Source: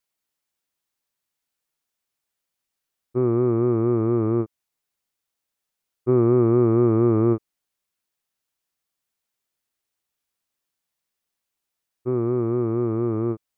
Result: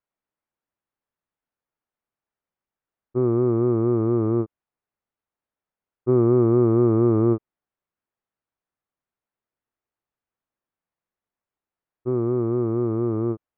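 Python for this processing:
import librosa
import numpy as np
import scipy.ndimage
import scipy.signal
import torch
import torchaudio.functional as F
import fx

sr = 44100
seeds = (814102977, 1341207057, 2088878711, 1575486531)

y = scipy.signal.sosfilt(scipy.signal.butter(2, 1500.0, 'lowpass', fs=sr, output='sos'), x)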